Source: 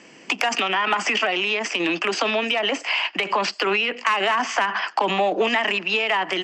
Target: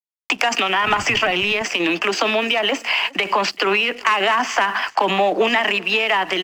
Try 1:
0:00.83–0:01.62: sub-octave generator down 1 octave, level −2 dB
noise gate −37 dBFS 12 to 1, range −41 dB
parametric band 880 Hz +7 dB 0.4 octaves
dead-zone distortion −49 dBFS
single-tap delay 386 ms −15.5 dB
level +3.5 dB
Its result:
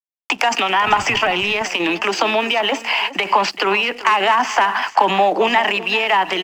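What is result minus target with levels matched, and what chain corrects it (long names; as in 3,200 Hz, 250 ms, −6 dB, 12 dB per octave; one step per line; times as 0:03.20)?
echo-to-direct +8 dB; 1,000 Hz band +2.5 dB
0:00.83–0:01.62: sub-octave generator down 1 octave, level −2 dB
noise gate −37 dBFS 12 to 1, range −41 dB
dead-zone distortion −49 dBFS
single-tap delay 386 ms −23.5 dB
level +3.5 dB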